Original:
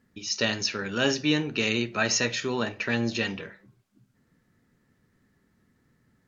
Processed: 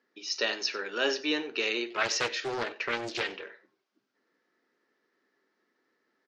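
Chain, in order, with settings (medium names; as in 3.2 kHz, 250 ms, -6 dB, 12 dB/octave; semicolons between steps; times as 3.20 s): Chebyshev band-pass 350–5400 Hz, order 3; echo from a far wall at 16 m, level -18 dB; 1.90–3.44 s: loudspeaker Doppler distortion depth 0.4 ms; trim -2 dB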